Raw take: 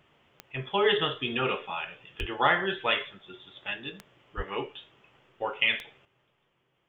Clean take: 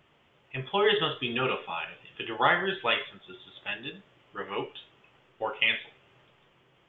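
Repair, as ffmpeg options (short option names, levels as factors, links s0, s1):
-filter_complex "[0:a]adeclick=t=4,asplit=3[s0][s1][s2];[s0]afade=t=out:st=2.19:d=0.02[s3];[s1]highpass=f=140:w=0.5412,highpass=f=140:w=1.3066,afade=t=in:st=2.19:d=0.02,afade=t=out:st=2.31:d=0.02[s4];[s2]afade=t=in:st=2.31:d=0.02[s5];[s3][s4][s5]amix=inputs=3:normalize=0,asplit=3[s6][s7][s8];[s6]afade=t=out:st=4.36:d=0.02[s9];[s7]highpass=f=140:w=0.5412,highpass=f=140:w=1.3066,afade=t=in:st=4.36:d=0.02,afade=t=out:st=4.48:d=0.02[s10];[s8]afade=t=in:st=4.48:d=0.02[s11];[s9][s10][s11]amix=inputs=3:normalize=0,asetnsamples=n=441:p=0,asendcmd='6.05 volume volume 10dB',volume=1"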